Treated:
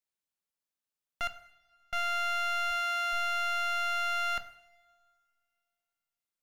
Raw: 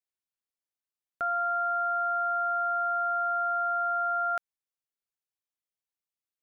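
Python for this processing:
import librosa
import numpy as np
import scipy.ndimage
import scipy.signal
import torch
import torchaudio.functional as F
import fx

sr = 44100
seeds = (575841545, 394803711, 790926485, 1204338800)

y = np.minimum(x, 2.0 * 10.0 ** (-33.0 / 20.0) - x)
y = fx.gate_flip(y, sr, shuts_db=-30.0, range_db=-41, at=(1.27, 1.93))
y = fx.highpass(y, sr, hz=fx.line((2.7, 590.0), (3.12, 410.0)), slope=12, at=(2.7, 3.12), fade=0.02)
y = fx.rev_double_slope(y, sr, seeds[0], early_s=0.65, late_s=2.3, knee_db=-20, drr_db=8.5)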